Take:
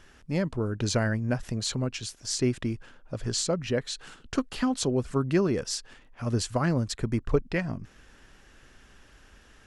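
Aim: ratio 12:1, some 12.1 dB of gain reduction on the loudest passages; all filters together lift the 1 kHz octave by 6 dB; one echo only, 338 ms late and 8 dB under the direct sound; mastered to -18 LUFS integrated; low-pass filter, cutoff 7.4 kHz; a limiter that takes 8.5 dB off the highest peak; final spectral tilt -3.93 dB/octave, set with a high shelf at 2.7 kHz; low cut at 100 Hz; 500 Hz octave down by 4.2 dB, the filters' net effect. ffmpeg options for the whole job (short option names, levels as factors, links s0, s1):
-af "highpass=100,lowpass=7400,equalizer=f=500:t=o:g=-8,equalizer=f=1000:t=o:g=9,highshelf=f=2700:g=6.5,acompressor=threshold=0.0224:ratio=12,alimiter=level_in=1.68:limit=0.0631:level=0:latency=1,volume=0.596,aecho=1:1:338:0.398,volume=11.2"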